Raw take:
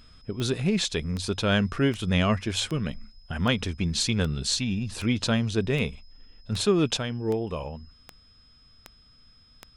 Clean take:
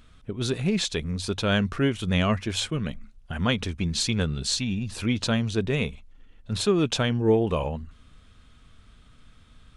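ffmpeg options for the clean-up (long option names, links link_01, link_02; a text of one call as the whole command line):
ffmpeg -i in.wav -af "adeclick=threshold=4,bandreject=frequency=5100:width=30,asetnsamples=nb_out_samples=441:pad=0,asendcmd='6.97 volume volume 6.5dB',volume=0dB" out.wav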